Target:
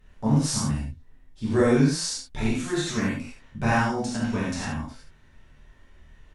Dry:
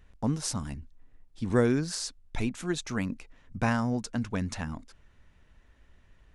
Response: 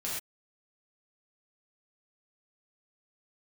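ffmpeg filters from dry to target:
-filter_complex "[0:a]aecho=1:1:27|72:0.562|0.473[link_01];[1:a]atrim=start_sample=2205,afade=type=out:start_time=0.14:duration=0.01,atrim=end_sample=6615,asetrate=35280,aresample=44100[link_02];[link_01][link_02]afir=irnorm=-1:irlink=0"

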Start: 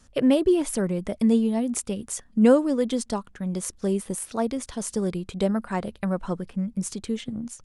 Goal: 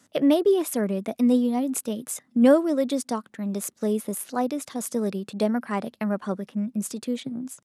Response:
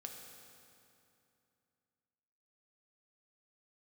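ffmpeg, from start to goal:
-af "highpass=frequency=130:width=0.5412,highpass=frequency=130:width=1.3066,asetrate=48091,aresample=44100,atempo=0.917004"

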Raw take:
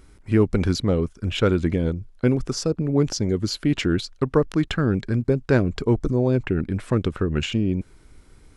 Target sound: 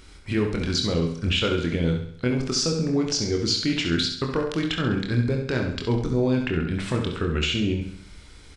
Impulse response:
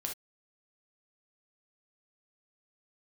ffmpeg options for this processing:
-filter_complex "[0:a]equalizer=frequency=3700:width_type=o:width=2.2:gain=11.5,alimiter=limit=-15.5dB:level=0:latency=1:release=405,aecho=1:1:67|134|201|268|335|402:0.355|0.177|0.0887|0.0444|0.0222|0.0111,asplit=2[link_01][link_02];[1:a]atrim=start_sample=2205,adelay=24[link_03];[link_02][link_03]afir=irnorm=-1:irlink=0,volume=-4dB[link_04];[link_01][link_04]amix=inputs=2:normalize=0,aresample=22050,aresample=44100"

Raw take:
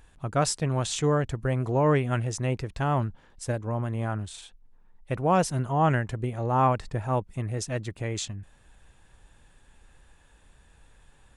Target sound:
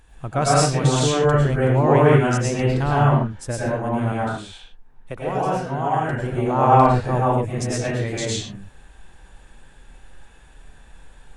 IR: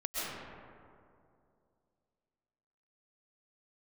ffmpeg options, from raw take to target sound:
-filter_complex "[0:a]asettb=1/sr,asplit=3[link_01][link_02][link_03];[link_01]atrim=end=4.124[link_04];[link_02]atrim=start=4.12:end=6.13,asetpts=PTS-STARTPTS,afade=type=in:duration=0.004:curve=qsin,afade=type=out:start_time=2.006:duration=0.004:curve=qsin,acrossover=split=330|1400|4000[link_05][link_06][link_07][link_08];[link_05]acompressor=threshold=-38dB:ratio=4[link_09];[link_06]acompressor=threshold=-30dB:ratio=4[link_10];[link_07]acompressor=threshold=-46dB:ratio=4[link_11];[link_08]acompressor=threshold=-55dB:ratio=4[link_12];[link_09][link_10][link_11][link_12]amix=inputs=4:normalize=0[link_13];[link_03]atrim=start=6.126[link_14];[link_04][link_13]acrossfade=duration=0.004:curve1=hsin:curve2=qsin[link_15];[link_15][link_14]acrossfade=duration=0.004:curve1=qsin:curve2=hsin[link_16];[1:a]atrim=start_sample=2205,afade=type=out:start_time=0.36:duration=0.01,atrim=end_sample=16317,asetrate=52920,aresample=44100[link_17];[link_16][link_17]afir=irnorm=-1:irlink=0,volume=6dB"

